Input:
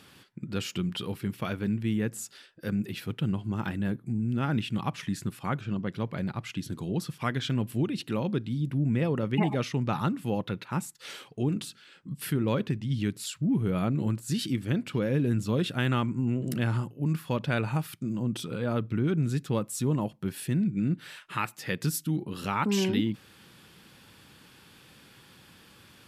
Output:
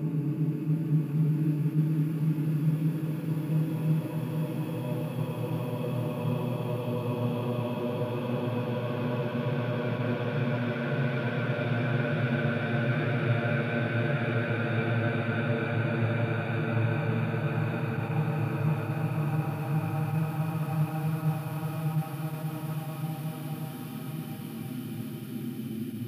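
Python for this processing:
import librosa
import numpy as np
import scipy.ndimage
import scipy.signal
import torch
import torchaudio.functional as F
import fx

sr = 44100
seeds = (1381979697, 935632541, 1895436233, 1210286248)

y = fx.graphic_eq(x, sr, hz=(1000, 4000, 8000), db=(-4, -4, -11))
y = fx.paulstretch(y, sr, seeds[0], factor=27.0, window_s=0.5, from_s=17.04)
y = y + 10.0 ** (-8.0 / 20.0) * np.pad(y, (int(1066 * sr / 1000.0), 0))[:len(y)]
y = fx.attack_slew(y, sr, db_per_s=210.0)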